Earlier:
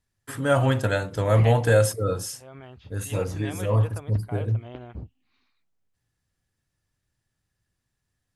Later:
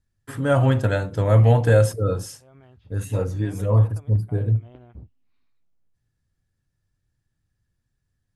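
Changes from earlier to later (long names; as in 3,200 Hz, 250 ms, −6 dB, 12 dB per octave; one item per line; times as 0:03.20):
second voice −9.5 dB
master: add spectral tilt −1.5 dB per octave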